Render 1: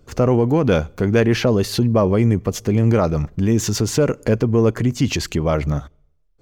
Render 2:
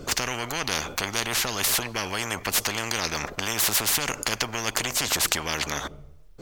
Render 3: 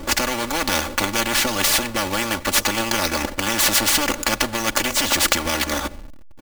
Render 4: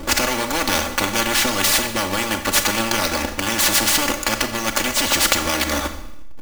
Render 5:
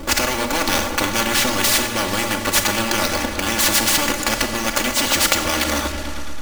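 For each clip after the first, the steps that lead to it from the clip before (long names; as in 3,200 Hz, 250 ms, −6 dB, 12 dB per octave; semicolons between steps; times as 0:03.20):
every bin compressed towards the loudest bin 10 to 1; level +1.5 dB
each half-wave held at its own peak; comb filter 3.5 ms, depth 80%
speech leveller 2 s; four-comb reverb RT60 0.8 s, combs from 28 ms, DRR 8 dB
echo whose low-pass opens from repeat to repeat 110 ms, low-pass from 200 Hz, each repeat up 2 octaves, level −6 dB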